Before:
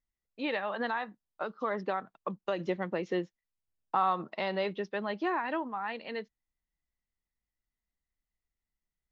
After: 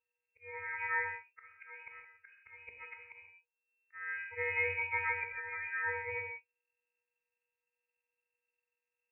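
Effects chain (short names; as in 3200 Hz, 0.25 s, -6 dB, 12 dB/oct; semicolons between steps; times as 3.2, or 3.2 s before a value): frequency quantiser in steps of 4 st; auto swell 0.747 s; reverb, pre-delay 3 ms, DRR 1.5 dB; inverted band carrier 2700 Hz; gain -3 dB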